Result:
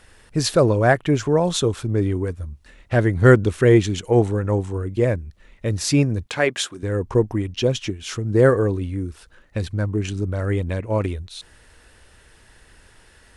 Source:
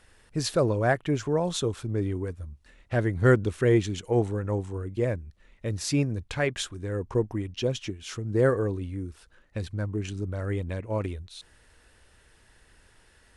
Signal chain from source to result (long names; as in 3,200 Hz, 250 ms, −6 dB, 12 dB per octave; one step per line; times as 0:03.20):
0:06.26–0:06.83: high-pass filter 220 Hz 12 dB per octave
level +7.5 dB